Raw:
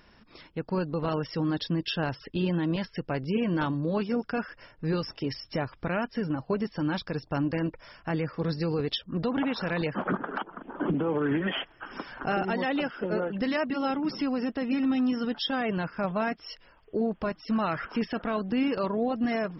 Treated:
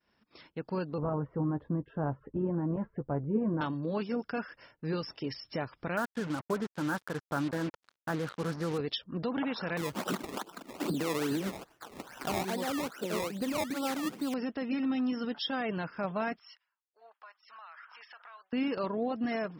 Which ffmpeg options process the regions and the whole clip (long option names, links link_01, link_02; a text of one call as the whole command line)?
ffmpeg -i in.wav -filter_complex "[0:a]asettb=1/sr,asplit=3[link_01][link_02][link_03];[link_01]atrim=end=0.984[link_04];[link_02]atrim=start=0.98:end=3.61,asetpts=PTS-STARTPTS,afade=type=in:duration=0.004:curve=qsin,afade=type=out:start_time=2.626:duration=0.004:curve=qsin,lowpass=frequency=1200:width=0.5412,lowpass=frequency=1200:width=1.3066,lowshelf=frequency=120:gain=10.5,asplit=2[link_05][link_06];[link_06]adelay=14,volume=-9dB[link_07];[link_05][link_07]amix=inputs=2:normalize=0,atrim=end_sample=115983[link_08];[link_03]atrim=start=3.606[link_09];[link_04][link_08]acrossfade=duration=0.004:curve1=hsin:curve2=qsin[link_10];[link_10][link_09]acrossfade=duration=0.004:curve1=qsin:curve2=hsin,asettb=1/sr,asplit=3[link_11][link_12][link_13];[link_11]atrim=end=5.974[link_14];[link_12]atrim=start=5.97:end=8.78,asetpts=PTS-STARTPTS,afade=type=in:duration=0.004:curve=qsin,afade=type=out:start_time=2.806:duration=0.004:curve=qsin,highshelf=frequency=2000:width_type=q:width=3:gain=-10,acrusher=bits=5:mix=0:aa=0.5[link_15];[link_13]atrim=start=8.776[link_16];[link_14][link_15]acrossfade=duration=0.004:curve1=hsin:curve2=qsin[link_17];[link_17][link_16]acrossfade=duration=0.004:curve1=qsin:curve2=hsin,asettb=1/sr,asplit=3[link_18][link_19][link_20];[link_18]atrim=end=9.774[link_21];[link_19]atrim=start=9.77:end=14.34,asetpts=PTS-STARTPTS,afade=type=in:duration=0.004:curve=qsin,afade=type=out:start_time=4.566:duration=0.004:curve=qsin,lowpass=frequency=1700:width=0.5412,lowpass=frequency=1700:width=1.3066,acrusher=samples=20:mix=1:aa=0.000001:lfo=1:lforange=20:lforate=2.4[link_22];[link_20]atrim=start=14.336[link_23];[link_21][link_22]acrossfade=duration=0.004:curve1=hsin:curve2=qsin[link_24];[link_24][link_23]acrossfade=duration=0.004:curve1=qsin:curve2=hsin,asettb=1/sr,asplit=3[link_25][link_26][link_27];[link_25]atrim=end=16.394[link_28];[link_26]atrim=start=16.39:end=18.53,asetpts=PTS-STARTPTS,afade=type=in:duration=0.004:curve=qsin,afade=type=out:start_time=2.136:duration=0.004:curve=qsin,highpass=frequency=1000:width=0.5412,highpass=frequency=1000:width=1.3066,highshelf=frequency=2100:gain=-9.5,acompressor=threshold=-43dB:ratio=5:attack=3.2:release=140:knee=1:detection=peak[link_29];[link_27]atrim=start=18.526[link_30];[link_28][link_29]acrossfade=duration=0.004:curve1=hsin:curve2=qsin[link_31];[link_31][link_30]acrossfade=duration=0.004:curve1=qsin:curve2=hsin,highpass=frequency=130:poles=1,agate=range=-33dB:threshold=-51dB:ratio=3:detection=peak,volume=-4dB" out.wav